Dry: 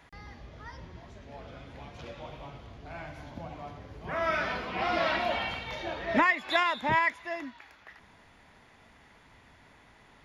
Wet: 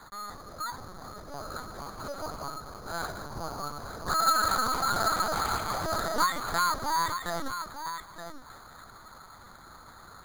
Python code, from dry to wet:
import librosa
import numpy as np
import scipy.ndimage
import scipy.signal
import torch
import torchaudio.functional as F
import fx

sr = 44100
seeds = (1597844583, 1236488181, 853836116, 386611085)

p1 = scipy.signal.sosfilt(scipy.signal.butter(2, 270.0, 'highpass', fs=sr, output='sos'), x)
p2 = fx.low_shelf(p1, sr, hz=420.0, db=10.0)
p3 = fx.notch(p2, sr, hz=720.0, q=12.0)
p4 = fx.over_compress(p3, sr, threshold_db=-34.0, ratio=-0.5)
p5 = p3 + (p4 * 10.0 ** (1.5 / 20.0))
p6 = fx.tube_stage(p5, sr, drive_db=17.0, bias=0.45)
p7 = fx.lowpass_res(p6, sr, hz=1300.0, q=6.8)
p8 = fx.quant_float(p7, sr, bits=2)
p9 = p8 + fx.echo_single(p8, sr, ms=909, db=-9.5, dry=0)
p10 = fx.lpc_vocoder(p9, sr, seeds[0], excitation='pitch_kept', order=10)
p11 = np.repeat(scipy.signal.resample_poly(p10, 1, 8), 8)[:len(p10)]
p12 = fx.doppler_dist(p11, sr, depth_ms=0.14)
y = p12 * 10.0 ** (-7.0 / 20.0)